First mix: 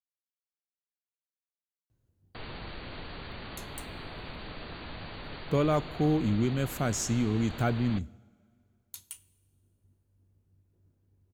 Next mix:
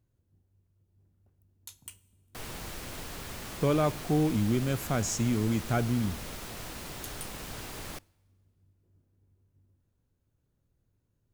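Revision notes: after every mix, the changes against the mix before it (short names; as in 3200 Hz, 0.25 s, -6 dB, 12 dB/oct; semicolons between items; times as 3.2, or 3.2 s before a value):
speech: entry -1.90 s; background: remove brick-wall FIR low-pass 4700 Hz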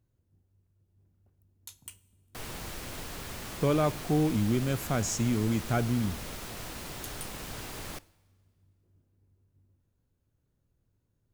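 background: send +6.5 dB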